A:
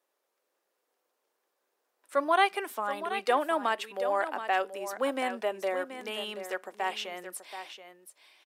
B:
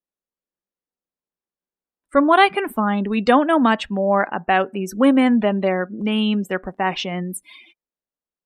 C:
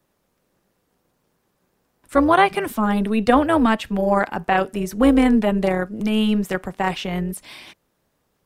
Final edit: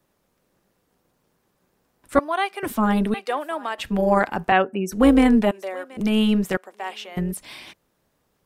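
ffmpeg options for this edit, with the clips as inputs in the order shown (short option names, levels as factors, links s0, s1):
-filter_complex "[0:a]asplit=4[s0][s1][s2][s3];[2:a]asplit=6[s4][s5][s6][s7][s8][s9];[s4]atrim=end=2.192[s10];[s0]atrim=start=2.188:end=2.632[s11];[s5]atrim=start=2.628:end=3.142[s12];[s1]atrim=start=3.138:end=3.782[s13];[s6]atrim=start=3.778:end=4.522[s14];[1:a]atrim=start=4.518:end=4.922[s15];[s7]atrim=start=4.918:end=5.512[s16];[s2]atrim=start=5.508:end=5.972[s17];[s8]atrim=start=5.968:end=6.572[s18];[s3]atrim=start=6.568:end=7.172[s19];[s9]atrim=start=7.168[s20];[s10][s11]acrossfade=d=0.004:c1=hsin:c2=hsin[s21];[s21][s12]acrossfade=d=0.004:c1=hsin:c2=hsin[s22];[s22][s13]acrossfade=d=0.004:c1=hsin:c2=hsin[s23];[s23][s14]acrossfade=d=0.004:c1=hsin:c2=hsin[s24];[s24][s15]acrossfade=d=0.004:c1=hsin:c2=hsin[s25];[s25][s16]acrossfade=d=0.004:c1=hsin:c2=hsin[s26];[s26][s17]acrossfade=d=0.004:c1=hsin:c2=hsin[s27];[s27][s18]acrossfade=d=0.004:c1=hsin:c2=hsin[s28];[s28][s19]acrossfade=d=0.004:c1=hsin:c2=hsin[s29];[s29][s20]acrossfade=d=0.004:c1=hsin:c2=hsin"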